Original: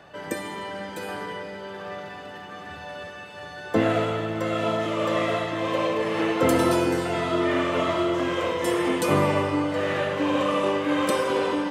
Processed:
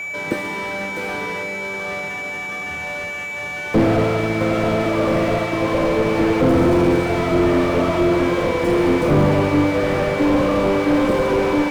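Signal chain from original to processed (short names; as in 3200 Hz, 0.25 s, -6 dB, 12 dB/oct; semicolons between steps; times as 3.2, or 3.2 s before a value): de-hum 95.05 Hz, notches 38; whine 2300 Hz -31 dBFS; in parallel at -6.5 dB: bit-crush 4-bit; on the sum: slew limiter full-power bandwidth 48 Hz; gain +6.5 dB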